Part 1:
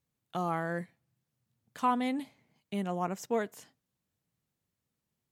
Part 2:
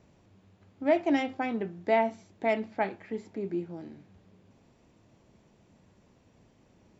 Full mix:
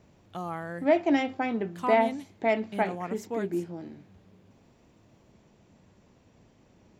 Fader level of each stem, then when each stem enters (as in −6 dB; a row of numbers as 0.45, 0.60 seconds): −3.0, +2.0 decibels; 0.00, 0.00 seconds